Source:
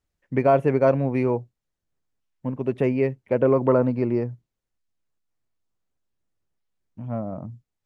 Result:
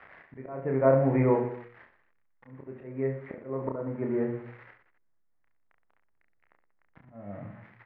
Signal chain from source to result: zero-crossing glitches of -22 dBFS; elliptic low-pass 2 kHz, stop band 80 dB; hum notches 60/120/180/240/300/360/420/480/540 Hz; slow attack 698 ms; on a send: reverse bouncing-ball echo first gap 30 ms, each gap 1.3×, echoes 5

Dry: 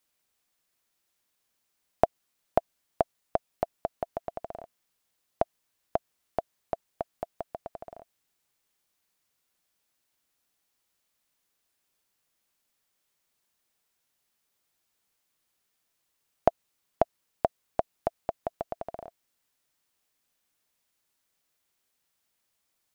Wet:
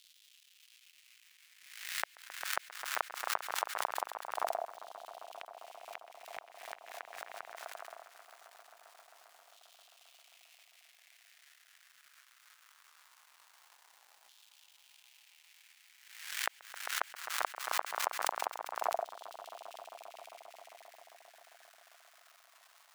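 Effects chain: treble shelf 2.2 kHz -9 dB; crackle 440 per s -51 dBFS; inverted gate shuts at -22 dBFS, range -42 dB; LFO high-pass saw down 0.21 Hz 740–3400 Hz; echo with a slow build-up 133 ms, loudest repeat 5, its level -18 dB; swell ahead of each attack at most 63 dB/s; trim +2.5 dB

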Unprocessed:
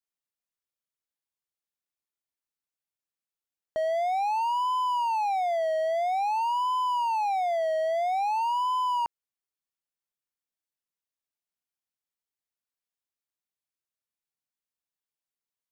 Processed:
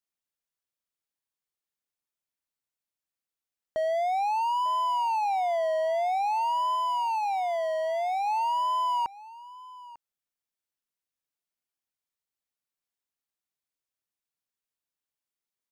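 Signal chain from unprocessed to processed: 6.75–8.27 s: bass shelf 310 Hz -10.5 dB; delay 897 ms -19 dB

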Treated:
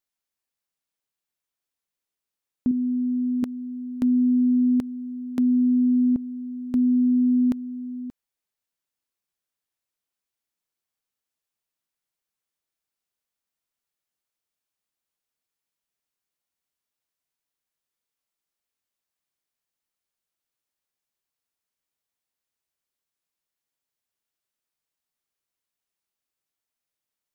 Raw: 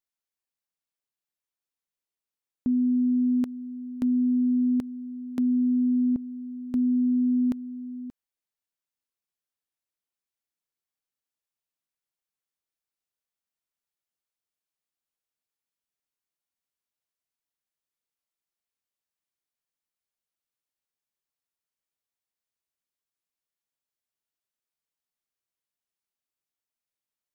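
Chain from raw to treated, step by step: 2.71–3.43 s: bass shelf 350 Hz -7.5 dB; trim +3.5 dB

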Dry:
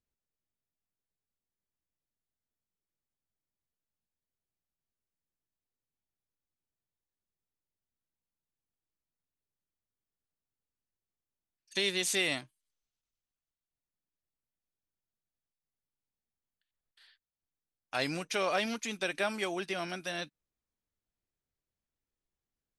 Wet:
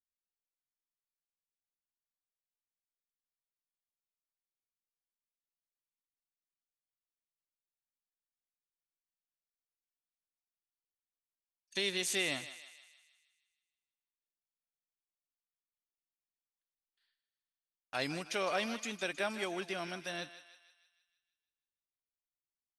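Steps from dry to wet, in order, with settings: gate -56 dBFS, range -16 dB; on a send: thinning echo 157 ms, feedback 54%, high-pass 760 Hz, level -12 dB; on the sum: trim -3.5 dB

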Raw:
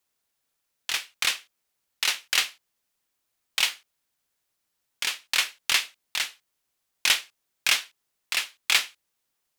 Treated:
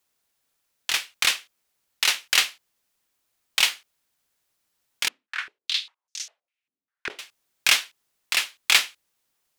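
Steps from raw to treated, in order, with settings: 5.08–7.19 s: step-sequenced band-pass 5 Hz 250–6100 Hz; trim +3.5 dB

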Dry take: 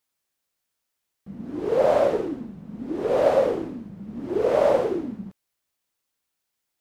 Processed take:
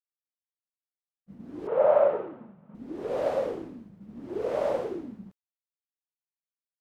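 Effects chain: expander -36 dBFS; 1.67–2.75 s: cabinet simulation 130–2800 Hz, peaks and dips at 280 Hz -10 dB, 590 Hz +9 dB, 900 Hz +7 dB, 1.3 kHz +9 dB; trim -8.5 dB

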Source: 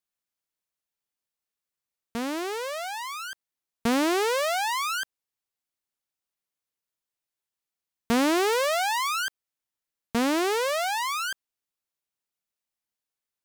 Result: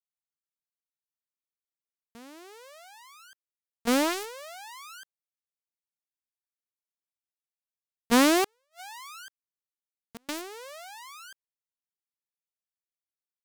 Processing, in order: gate -22 dBFS, range -18 dB; treble shelf 4.4 kHz +5 dB; 8.44–10.29 s: inverted gate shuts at -29 dBFS, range -39 dB; in parallel at -3 dB: bit crusher 5-bit

